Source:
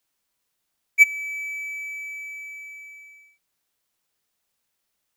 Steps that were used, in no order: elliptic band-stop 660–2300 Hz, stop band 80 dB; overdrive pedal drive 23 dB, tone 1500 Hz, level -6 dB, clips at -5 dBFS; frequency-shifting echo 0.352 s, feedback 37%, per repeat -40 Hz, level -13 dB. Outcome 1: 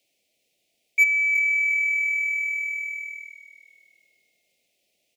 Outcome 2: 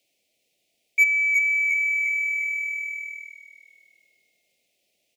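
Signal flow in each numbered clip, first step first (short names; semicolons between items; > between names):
overdrive pedal > frequency-shifting echo > elliptic band-stop; frequency-shifting echo > overdrive pedal > elliptic band-stop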